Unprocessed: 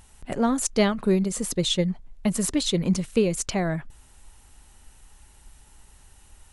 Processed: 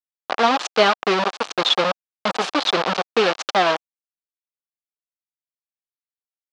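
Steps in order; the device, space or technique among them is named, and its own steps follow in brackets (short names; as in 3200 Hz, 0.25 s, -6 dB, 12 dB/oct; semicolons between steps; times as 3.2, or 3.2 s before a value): hand-held game console (bit-crush 4-bit; speaker cabinet 490–4600 Hz, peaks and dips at 770 Hz +4 dB, 1200 Hz +4 dB, 2000 Hz -4 dB); gain +7.5 dB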